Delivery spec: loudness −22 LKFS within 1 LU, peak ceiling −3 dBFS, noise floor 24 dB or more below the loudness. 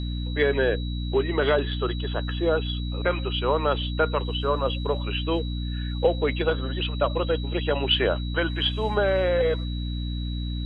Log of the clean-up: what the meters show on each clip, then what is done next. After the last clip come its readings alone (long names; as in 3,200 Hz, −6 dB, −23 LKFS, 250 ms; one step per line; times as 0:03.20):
mains hum 60 Hz; hum harmonics up to 300 Hz; level of the hum −27 dBFS; interfering tone 3,900 Hz; level of the tone −40 dBFS; integrated loudness −25.5 LKFS; sample peak −9.0 dBFS; target loudness −22.0 LKFS
→ mains-hum notches 60/120/180/240/300 Hz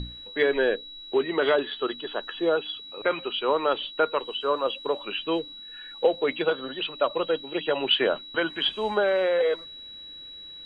mains hum none found; interfering tone 3,900 Hz; level of the tone −40 dBFS
→ notch filter 3,900 Hz, Q 30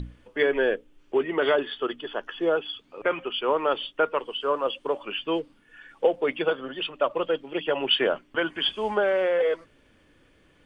interfering tone none found; integrated loudness −26.5 LKFS; sample peak −9.0 dBFS; target loudness −22.0 LKFS
→ level +4.5 dB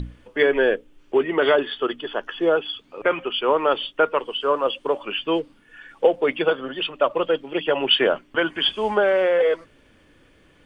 integrated loudness −22.0 LKFS; sample peak −4.5 dBFS; background noise floor −56 dBFS